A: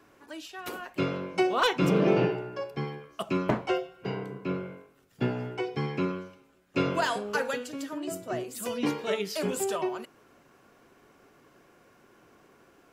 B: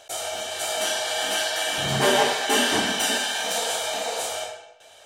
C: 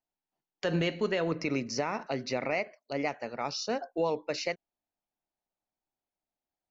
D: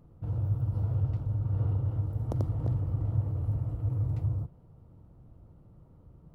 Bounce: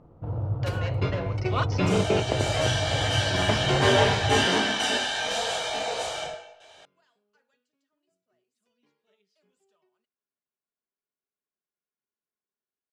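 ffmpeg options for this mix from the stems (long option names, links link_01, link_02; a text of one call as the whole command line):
ffmpeg -i stem1.wav -i stem2.wav -i stem3.wav -i stem4.wav -filter_complex "[0:a]highshelf=frequency=2200:gain=8.5,aecho=1:1:4.8:0.36,volume=-2dB[link_01];[1:a]flanger=delay=18:depth=3.1:speed=0.75,adelay=1800,volume=2dB[link_02];[2:a]lowshelf=frequency=440:width_type=q:width=3:gain=-9,asoftclip=type=tanh:threshold=-25.5dB,volume=-3.5dB,asplit=2[link_03][link_04];[3:a]equalizer=frequency=710:width=0.38:gain=12,volume=-1.5dB[link_05];[link_04]apad=whole_len=570007[link_06];[link_01][link_06]sidechaingate=range=-42dB:threshold=-40dB:ratio=16:detection=peak[link_07];[link_07][link_02][link_03][link_05]amix=inputs=4:normalize=0,lowpass=5500" out.wav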